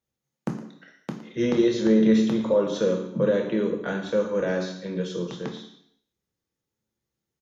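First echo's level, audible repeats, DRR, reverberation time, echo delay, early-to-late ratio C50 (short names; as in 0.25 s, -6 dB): -14.5 dB, 1, 2.0 dB, 0.65 s, 0.114 s, 8.0 dB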